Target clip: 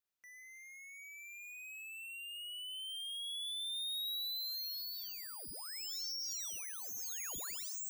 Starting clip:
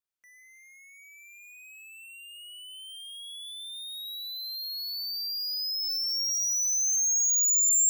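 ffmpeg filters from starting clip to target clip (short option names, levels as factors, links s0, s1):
-af "equalizer=f=8800:t=o:w=0.38:g=-3.5,aeval=exprs='0.0126*(abs(mod(val(0)/0.0126+3,4)-2)-1)':c=same"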